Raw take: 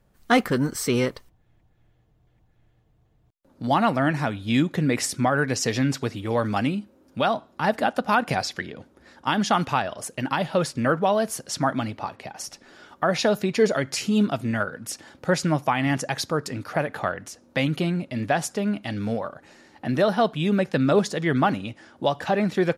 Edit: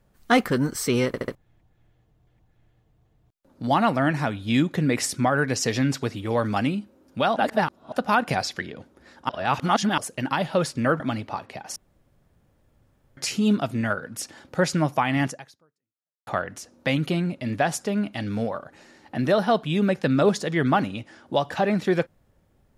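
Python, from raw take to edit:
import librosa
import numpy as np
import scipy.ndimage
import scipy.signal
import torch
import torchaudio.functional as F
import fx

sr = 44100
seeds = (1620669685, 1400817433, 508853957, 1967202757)

y = fx.edit(x, sr, fx.stutter_over(start_s=1.07, slice_s=0.07, count=4),
    fx.reverse_span(start_s=7.36, length_s=0.56),
    fx.reverse_span(start_s=9.29, length_s=0.69),
    fx.cut(start_s=11.0, length_s=0.7),
    fx.room_tone_fill(start_s=12.46, length_s=1.41),
    fx.fade_out_span(start_s=15.96, length_s=1.01, curve='exp'), tone=tone)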